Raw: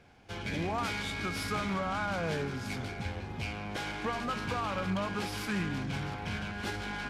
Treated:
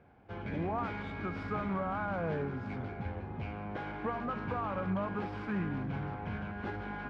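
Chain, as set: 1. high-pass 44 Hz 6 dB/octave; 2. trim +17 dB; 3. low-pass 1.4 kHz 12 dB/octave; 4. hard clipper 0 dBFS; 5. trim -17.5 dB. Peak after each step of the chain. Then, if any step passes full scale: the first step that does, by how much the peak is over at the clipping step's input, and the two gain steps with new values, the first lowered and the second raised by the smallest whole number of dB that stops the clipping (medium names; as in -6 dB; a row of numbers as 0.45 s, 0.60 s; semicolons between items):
-22.0 dBFS, -5.0 dBFS, -5.5 dBFS, -5.5 dBFS, -23.0 dBFS; nothing clips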